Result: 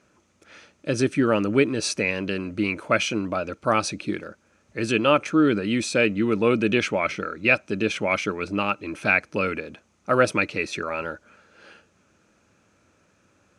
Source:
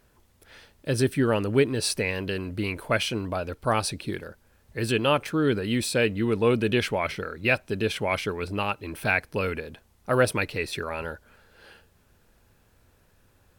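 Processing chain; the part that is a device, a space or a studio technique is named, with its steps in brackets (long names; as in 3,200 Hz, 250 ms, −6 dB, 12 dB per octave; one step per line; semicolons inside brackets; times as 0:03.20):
car door speaker (loudspeaker in its box 100–8,800 Hz, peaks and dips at 200 Hz +7 dB, 310 Hz +9 dB, 580 Hz +6 dB, 1,300 Hz +9 dB, 2,400 Hz +8 dB, 6,300 Hz +10 dB)
level −2 dB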